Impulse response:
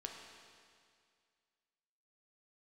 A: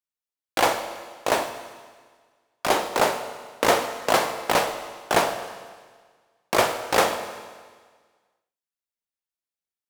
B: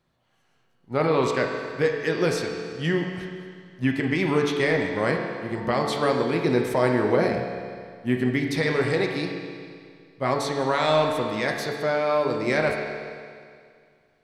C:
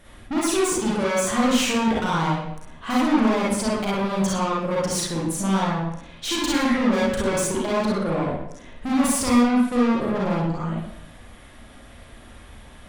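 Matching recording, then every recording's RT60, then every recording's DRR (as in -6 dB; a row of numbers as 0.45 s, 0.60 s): B; 1.6 s, 2.1 s, 0.75 s; 7.5 dB, 0.5 dB, -6.5 dB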